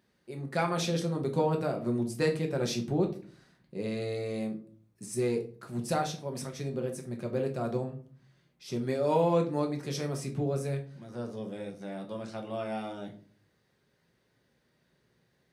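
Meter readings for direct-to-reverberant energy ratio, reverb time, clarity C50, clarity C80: 2.0 dB, 0.45 s, 11.5 dB, 17.0 dB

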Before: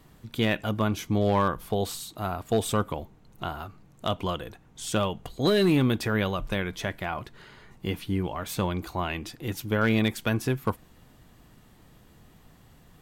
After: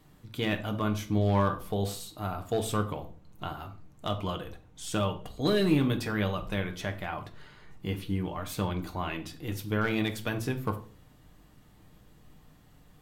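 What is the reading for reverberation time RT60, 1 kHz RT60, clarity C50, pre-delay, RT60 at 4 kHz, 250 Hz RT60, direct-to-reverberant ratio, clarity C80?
0.45 s, 0.40 s, 13.5 dB, 7 ms, 0.35 s, 0.60 s, 5.0 dB, 18.0 dB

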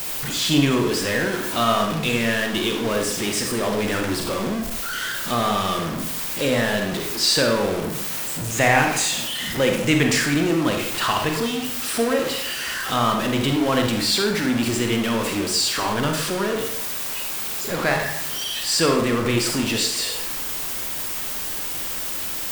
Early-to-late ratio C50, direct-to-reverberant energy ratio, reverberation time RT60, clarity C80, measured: 5.0 dB, 3.0 dB, 0.75 s, 8.0 dB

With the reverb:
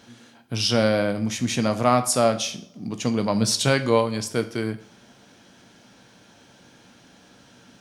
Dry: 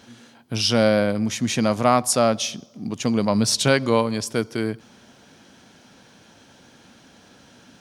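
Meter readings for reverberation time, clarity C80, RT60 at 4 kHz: 0.45 s, 18.5 dB, 0.40 s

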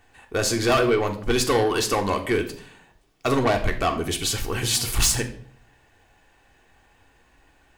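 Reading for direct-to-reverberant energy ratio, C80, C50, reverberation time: 3.0 dB, 15.5 dB, 12.0 dB, 0.55 s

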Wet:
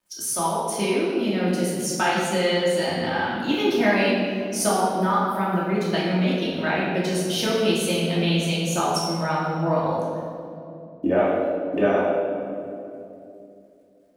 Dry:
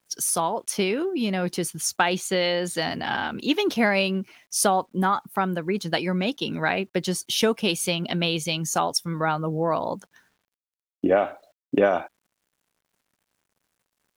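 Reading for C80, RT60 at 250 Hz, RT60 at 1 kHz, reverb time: 1.0 dB, 3.6 s, 2.4 s, 2.8 s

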